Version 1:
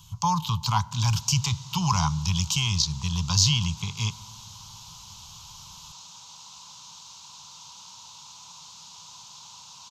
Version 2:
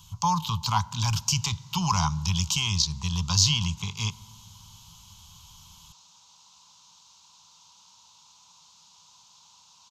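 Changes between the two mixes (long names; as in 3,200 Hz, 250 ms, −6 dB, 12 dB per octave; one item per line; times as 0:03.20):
background −10.0 dB
master: add parametric band 130 Hz −7.5 dB 0.3 octaves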